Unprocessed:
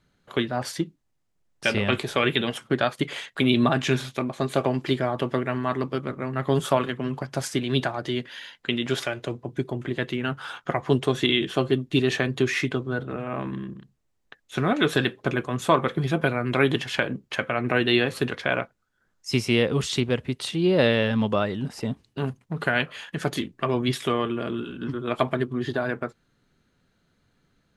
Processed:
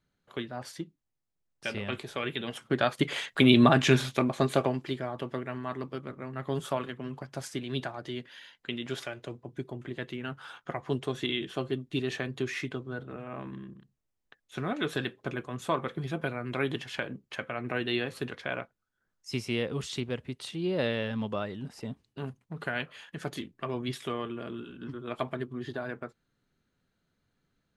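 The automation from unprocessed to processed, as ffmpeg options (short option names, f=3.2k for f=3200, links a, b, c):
-af "volume=1dB,afade=t=in:st=2.4:d=0.85:silence=0.251189,afade=t=out:st=4.36:d=0.49:silence=0.298538"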